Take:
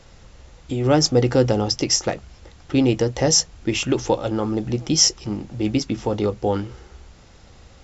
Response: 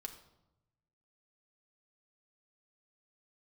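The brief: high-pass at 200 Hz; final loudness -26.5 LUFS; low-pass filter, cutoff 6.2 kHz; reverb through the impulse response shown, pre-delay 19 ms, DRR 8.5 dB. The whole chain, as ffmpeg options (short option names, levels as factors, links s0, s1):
-filter_complex "[0:a]highpass=200,lowpass=6200,asplit=2[s0][s1];[1:a]atrim=start_sample=2205,adelay=19[s2];[s1][s2]afir=irnorm=-1:irlink=0,volume=0.562[s3];[s0][s3]amix=inputs=2:normalize=0,volume=0.562"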